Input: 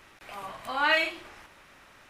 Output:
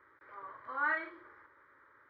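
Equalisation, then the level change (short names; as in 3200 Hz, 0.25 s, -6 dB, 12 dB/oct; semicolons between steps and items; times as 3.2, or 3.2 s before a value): HPF 110 Hz 12 dB/oct; ladder low-pass 2400 Hz, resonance 35%; fixed phaser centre 720 Hz, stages 6; 0.0 dB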